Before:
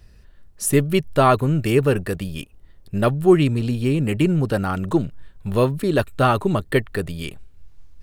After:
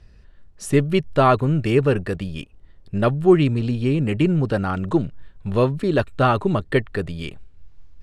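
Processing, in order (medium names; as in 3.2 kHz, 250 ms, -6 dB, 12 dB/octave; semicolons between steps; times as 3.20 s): distance through air 77 m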